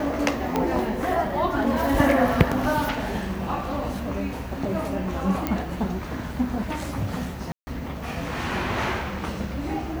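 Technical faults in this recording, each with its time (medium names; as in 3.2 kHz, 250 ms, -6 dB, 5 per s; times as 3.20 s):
0.56 s: pop -9 dBFS
5.47 s: pop -10 dBFS
7.52–7.67 s: dropout 150 ms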